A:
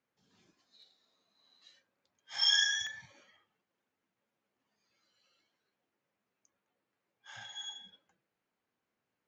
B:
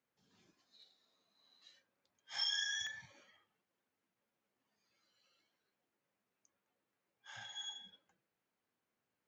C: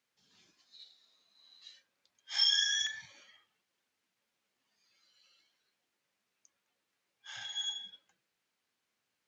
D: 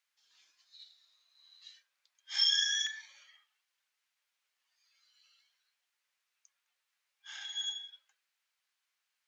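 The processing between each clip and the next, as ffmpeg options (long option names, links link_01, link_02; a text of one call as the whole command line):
ffmpeg -i in.wav -af "acompressor=threshold=-32dB:ratio=5,volume=-2.5dB" out.wav
ffmpeg -i in.wav -af "equalizer=frequency=4300:width_type=o:width=2.9:gain=12,volume=-2dB" out.wav
ffmpeg -i in.wav -af "highpass=1100" out.wav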